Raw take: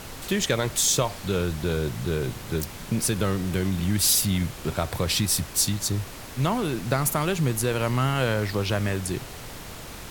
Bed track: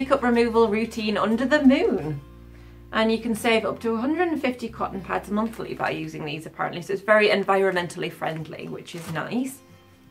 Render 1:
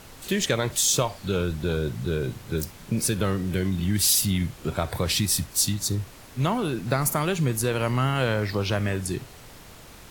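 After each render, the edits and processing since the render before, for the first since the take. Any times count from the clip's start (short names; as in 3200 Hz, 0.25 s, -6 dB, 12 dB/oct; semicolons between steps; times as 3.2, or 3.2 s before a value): noise print and reduce 7 dB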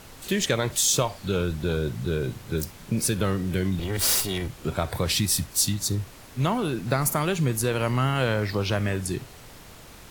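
3.79–4.49 minimum comb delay 2.1 ms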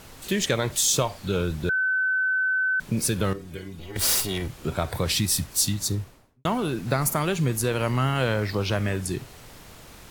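1.69–2.8 bleep 1520 Hz -20.5 dBFS; 3.33–3.96 metallic resonator 72 Hz, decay 0.28 s, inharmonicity 0.008; 5.86–6.45 studio fade out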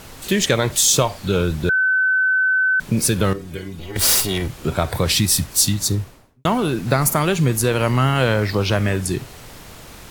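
gain +6.5 dB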